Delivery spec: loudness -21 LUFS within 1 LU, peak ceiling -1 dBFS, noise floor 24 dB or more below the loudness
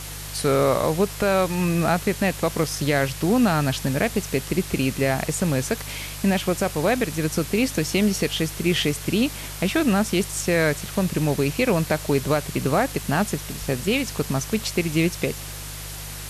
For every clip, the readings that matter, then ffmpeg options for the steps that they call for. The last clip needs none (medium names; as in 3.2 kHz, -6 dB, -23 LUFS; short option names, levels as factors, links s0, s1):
hum 50 Hz; highest harmonic 150 Hz; hum level -35 dBFS; noise floor -35 dBFS; noise floor target -47 dBFS; loudness -23.0 LUFS; peak level -8.5 dBFS; loudness target -21.0 LUFS
-> -af "bandreject=f=50:t=h:w=4,bandreject=f=100:t=h:w=4,bandreject=f=150:t=h:w=4"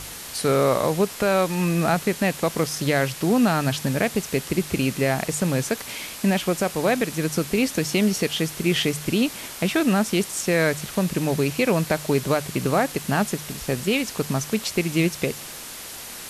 hum not found; noise floor -37 dBFS; noise floor target -47 dBFS
-> -af "afftdn=nr=10:nf=-37"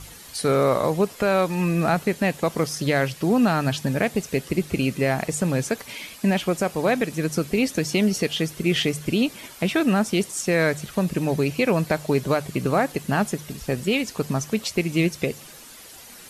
noise floor -44 dBFS; noise floor target -48 dBFS
-> -af "afftdn=nr=6:nf=-44"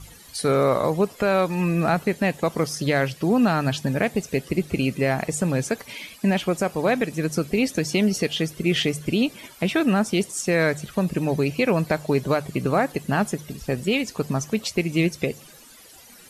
noise floor -48 dBFS; loudness -23.5 LUFS; peak level -9.5 dBFS; loudness target -21.0 LUFS
-> -af "volume=1.33"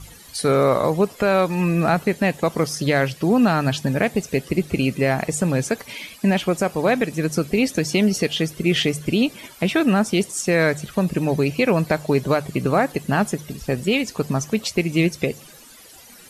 loudness -21.0 LUFS; peak level -7.0 dBFS; noise floor -45 dBFS